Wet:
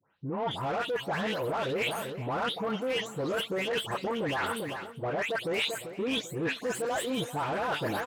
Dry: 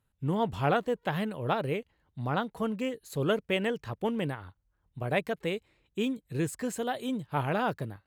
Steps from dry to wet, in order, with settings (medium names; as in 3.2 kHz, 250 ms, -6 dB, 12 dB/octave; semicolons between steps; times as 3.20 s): delay that grows with frequency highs late, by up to 275 ms; bass shelf 140 Hz -11.5 dB; peak limiter -27.5 dBFS, peak gain reduction 10 dB; level rider gain up to 10 dB; overdrive pedal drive 17 dB, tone 1 kHz, clips at -17.5 dBFS; high-pass 72 Hz; feedback delay 393 ms, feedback 45%, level -16.5 dB; reverse; compression 10:1, threshold -36 dBFS, peak gain reduction 14.5 dB; reverse; treble shelf 5 kHz +9.5 dB; trim +7 dB